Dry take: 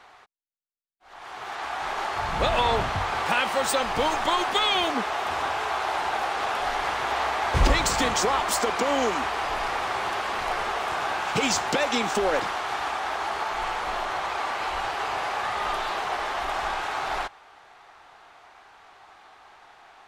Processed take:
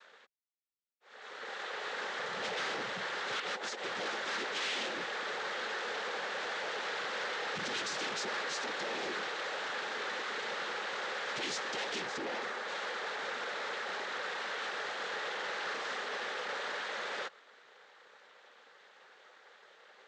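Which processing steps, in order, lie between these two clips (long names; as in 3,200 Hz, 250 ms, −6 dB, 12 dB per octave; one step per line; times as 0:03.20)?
0:03.39–0:03.87: compressor whose output falls as the input rises −28 dBFS, ratio −0.5
0:11.99–0:12.68: parametric band 3,300 Hz −9 dB 0.8 octaves
cochlear-implant simulation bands 6
hard clipping −27 dBFS, distortion −8 dB
loudspeaker in its box 260–6,300 Hz, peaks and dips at 280 Hz −6 dB, 680 Hz −8 dB, 980 Hz −6 dB
level −5 dB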